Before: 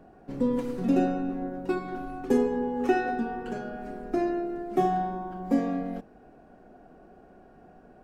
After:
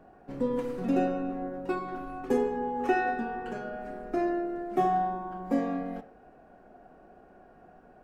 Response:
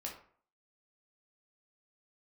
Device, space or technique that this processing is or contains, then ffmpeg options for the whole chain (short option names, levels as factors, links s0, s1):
filtered reverb send: -filter_complex "[0:a]asplit=2[s0][s1];[s1]highpass=460,lowpass=3000[s2];[1:a]atrim=start_sample=2205[s3];[s2][s3]afir=irnorm=-1:irlink=0,volume=0.944[s4];[s0][s4]amix=inputs=2:normalize=0,volume=0.668"